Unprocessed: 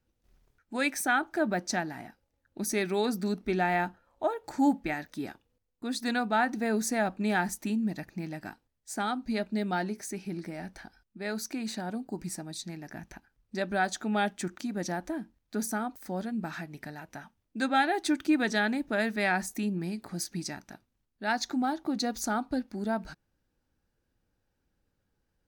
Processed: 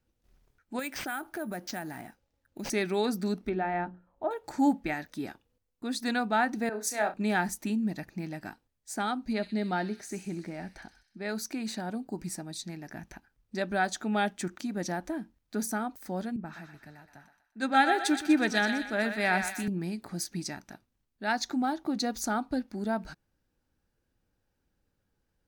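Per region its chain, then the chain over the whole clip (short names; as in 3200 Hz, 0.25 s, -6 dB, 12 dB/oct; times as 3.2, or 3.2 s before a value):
0.79–2.7 compressor 3:1, threshold -34 dBFS + sample-rate reducer 11000 Hz
3.49–4.31 tape spacing loss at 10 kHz 37 dB + notches 60/120/180/240/300/360/420/480/540/600 Hz
6.69–7.14 HPF 420 Hz + flutter echo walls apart 5.7 m, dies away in 0.25 s + three-band expander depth 100%
9.33–11.29 high shelf 7600 Hz -10.5 dB + thin delay 64 ms, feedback 64%, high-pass 3800 Hz, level -5 dB
16.36–19.68 thinning echo 0.123 s, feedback 62%, high-pass 720 Hz, level -5.5 dB + three-band expander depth 70%
whole clip: dry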